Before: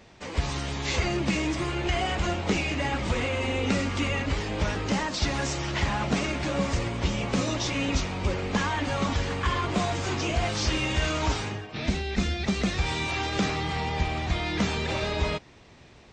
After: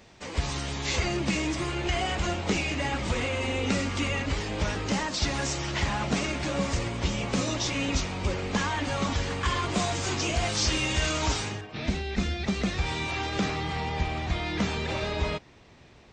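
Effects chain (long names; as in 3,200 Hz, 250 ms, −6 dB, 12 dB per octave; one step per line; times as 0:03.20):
high-shelf EQ 5,100 Hz +5.5 dB, from 0:09.43 +11 dB, from 0:11.61 −2.5 dB
level −1.5 dB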